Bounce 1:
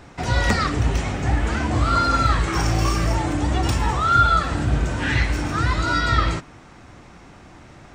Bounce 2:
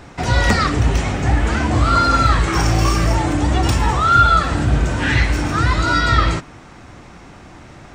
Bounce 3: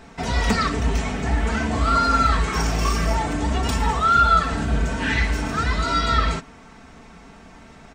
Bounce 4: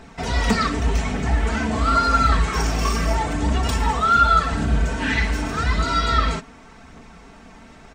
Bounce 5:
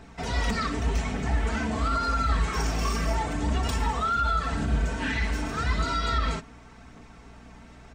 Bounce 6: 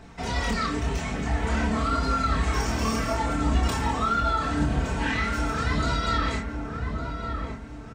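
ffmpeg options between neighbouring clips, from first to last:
-af "acontrast=20"
-af "aecho=1:1:4.5:0.67,volume=0.501"
-af "aphaser=in_gain=1:out_gain=1:delay=4.9:decay=0.26:speed=0.86:type=triangular"
-filter_complex "[0:a]acrossover=split=100[s0][s1];[s1]alimiter=limit=0.2:level=0:latency=1:release=71[s2];[s0][s2]amix=inputs=2:normalize=0,aeval=exprs='val(0)+0.00562*(sin(2*PI*60*n/s)+sin(2*PI*2*60*n/s)/2+sin(2*PI*3*60*n/s)/3+sin(2*PI*4*60*n/s)/4+sin(2*PI*5*60*n/s)/5)':c=same,volume=0.531"
-filter_complex "[0:a]asplit=2[s0][s1];[s1]adelay=27,volume=0.596[s2];[s0][s2]amix=inputs=2:normalize=0,asplit=2[s3][s4];[s4]adelay=1158,lowpass=f=940:p=1,volume=0.708,asplit=2[s5][s6];[s6]adelay=1158,lowpass=f=940:p=1,volume=0.4,asplit=2[s7][s8];[s8]adelay=1158,lowpass=f=940:p=1,volume=0.4,asplit=2[s9][s10];[s10]adelay=1158,lowpass=f=940:p=1,volume=0.4,asplit=2[s11][s12];[s12]adelay=1158,lowpass=f=940:p=1,volume=0.4[s13];[s3][s5][s7][s9][s11][s13]amix=inputs=6:normalize=0"

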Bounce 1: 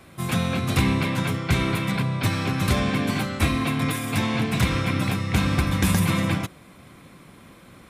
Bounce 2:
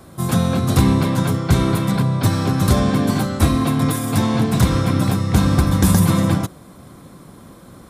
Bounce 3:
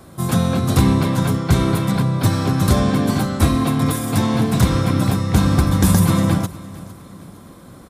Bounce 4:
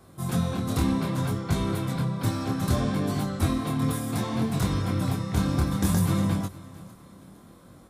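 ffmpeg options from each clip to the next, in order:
-af "equalizer=f=2400:t=o:w=1:g=-13.5,volume=2.24"
-af "aecho=1:1:459|918|1377:0.106|0.0424|0.0169"
-af "flanger=delay=20:depth=7.1:speed=0.63,volume=0.473"

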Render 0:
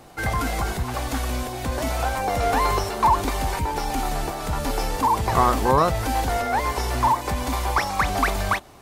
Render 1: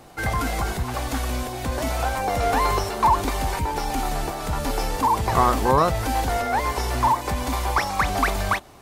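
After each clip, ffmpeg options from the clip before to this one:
-af anull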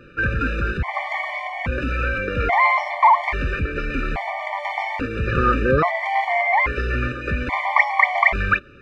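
-af "lowpass=f=2200:t=q:w=4.8,afftfilt=real='re*gt(sin(2*PI*0.6*pts/sr)*(1-2*mod(floor(b*sr/1024/590),2)),0)':imag='im*gt(sin(2*PI*0.6*pts/sr)*(1-2*mod(floor(b*sr/1024/590),2)),0)':win_size=1024:overlap=0.75,volume=1.41"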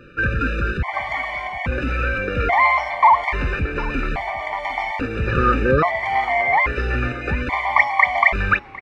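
-af "aecho=1:1:752:0.0891,volume=1.12"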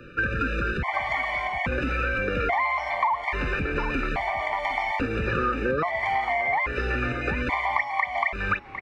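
-filter_complex "[0:a]acrossover=split=200|720|2700[s0][s1][s2][s3];[s0]alimiter=limit=0.0668:level=0:latency=1[s4];[s4][s1][s2][s3]amix=inputs=4:normalize=0,acompressor=threshold=0.0794:ratio=6"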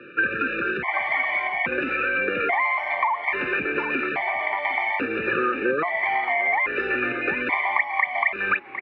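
-af "highpass=240,equalizer=f=360:t=q:w=4:g=7,equalizer=f=1700:t=q:w=4:g=5,equalizer=f=2400:t=q:w=4:g=6,lowpass=f=3500:w=0.5412,lowpass=f=3500:w=1.3066"

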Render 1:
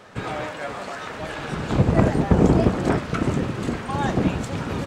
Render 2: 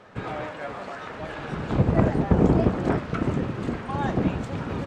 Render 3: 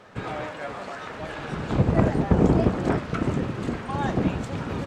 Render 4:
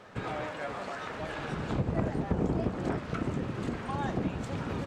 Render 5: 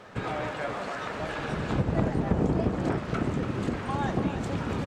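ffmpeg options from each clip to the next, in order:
-af "lowpass=f=2500:p=1,volume=0.75"
-af "highshelf=f=4500:g=6"
-af "acompressor=threshold=0.0316:ratio=2,volume=0.794"
-af "aecho=1:1:286:0.355,volume=1.5"

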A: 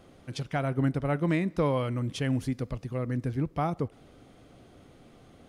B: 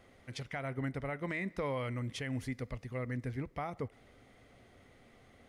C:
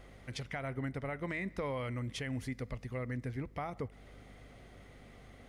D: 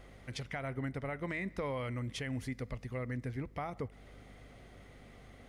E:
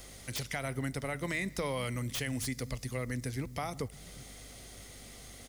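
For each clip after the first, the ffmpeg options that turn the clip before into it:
-af "equalizer=f=160:t=o:w=0.33:g=-9,equalizer=f=315:t=o:w=0.33:g=-7,equalizer=f=2000:t=o:w=0.33:g=11,alimiter=limit=0.0794:level=0:latency=1:release=136,volume=0.531"
-af "acompressor=threshold=0.00447:ratio=1.5,aeval=exprs='val(0)+0.001*(sin(2*PI*50*n/s)+sin(2*PI*2*50*n/s)/2+sin(2*PI*3*50*n/s)/3+sin(2*PI*4*50*n/s)/4+sin(2*PI*5*50*n/s)/5)':c=same,volume=1.58"
-af anull
-filter_complex "[0:a]acrossover=split=250|4700[s0][s1][s2];[s0]aecho=1:1:363:0.316[s3];[s2]aeval=exprs='0.0168*sin(PI/2*7.08*val(0)/0.0168)':c=same[s4];[s3][s1][s4]amix=inputs=3:normalize=0,volume=1.26"

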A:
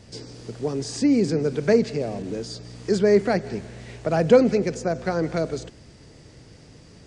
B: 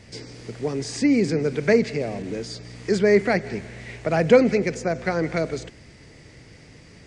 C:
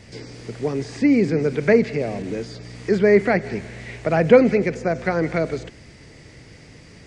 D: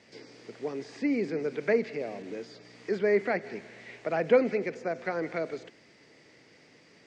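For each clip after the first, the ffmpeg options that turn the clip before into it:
-af "equalizer=f=2100:t=o:w=0.59:g=9.5"
-filter_complex "[0:a]acrossover=split=3200[s0][s1];[s1]acompressor=threshold=0.00447:ratio=4:attack=1:release=60[s2];[s0][s2]amix=inputs=2:normalize=0,volume=1.33"
-af "highpass=270,lowpass=6100,volume=0.355"

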